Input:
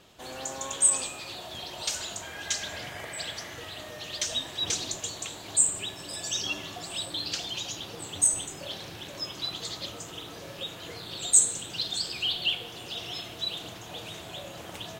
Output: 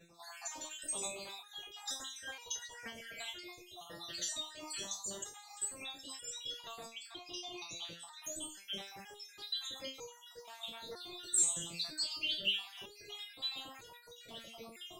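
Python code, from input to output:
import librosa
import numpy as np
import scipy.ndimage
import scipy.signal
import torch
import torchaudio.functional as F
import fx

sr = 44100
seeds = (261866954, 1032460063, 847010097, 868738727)

y = fx.spec_dropout(x, sr, seeds[0], share_pct=63)
y = fx.high_shelf(y, sr, hz=6600.0, db=-11.5, at=(6.85, 8.24))
y = fx.resonator_held(y, sr, hz=2.1, low_hz=170.0, high_hz=480.0)
y = y * 10.0 ** (9.5 / 20.0)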